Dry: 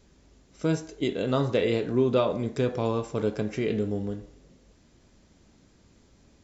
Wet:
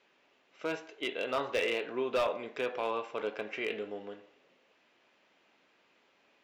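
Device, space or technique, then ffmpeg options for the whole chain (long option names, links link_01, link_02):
megaphone: -af "highpass=650,lowpass=2700,equalizer=frequency=2700:width_type=o:width=0.6:gain=8,asoftclip=type=hard:threshold=-24dB"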